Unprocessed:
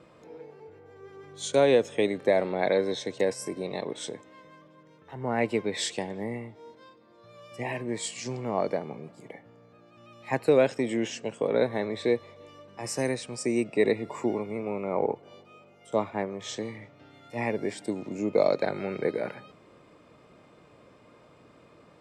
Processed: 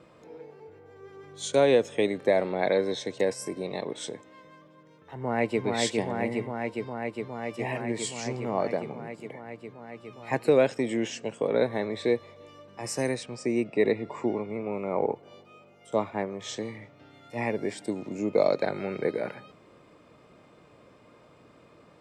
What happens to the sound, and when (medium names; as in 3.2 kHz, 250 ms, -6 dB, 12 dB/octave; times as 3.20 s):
5.15–5.64 s: echo throw 410 ms, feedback 85%, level -2.5 dB
13.23–14.73 s: distance through air 95 m